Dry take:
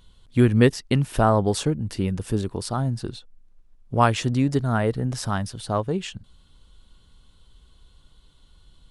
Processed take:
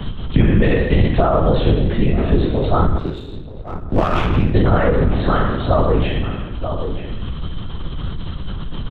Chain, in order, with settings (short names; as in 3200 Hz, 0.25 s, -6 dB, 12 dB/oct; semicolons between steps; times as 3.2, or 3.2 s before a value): spectral trails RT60 0.82 s; bell 79 Hz -12.5 dB 0.56 oct; comb 1.6 ms, depth 72%; limiter -11 dBFS, peak gain reduction 9 dB; LPC vocoder at 8 kHz whisper; outdoor echo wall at 160 m, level -18 dB; 2.98–4.54 power-law curve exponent 1.4; low shelf 390 Hz +7.5 dB; three-band squash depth 70%; gain +3.5 dB